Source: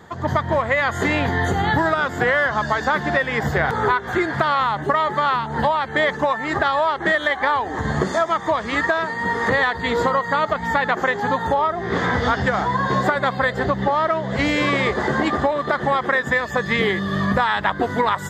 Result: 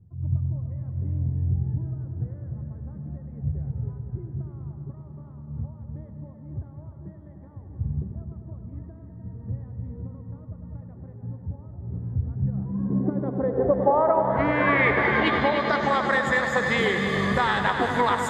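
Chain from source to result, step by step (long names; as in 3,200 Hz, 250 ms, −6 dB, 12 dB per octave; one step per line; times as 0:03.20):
low-pass filter sweep 110 Hz → 9,600 Hz, 0:12.25–0:16.25
on a send: echo machine with several playback heads 100 ms, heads all three, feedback 65%, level −11.5 dB
on the sum: level −4.5 dB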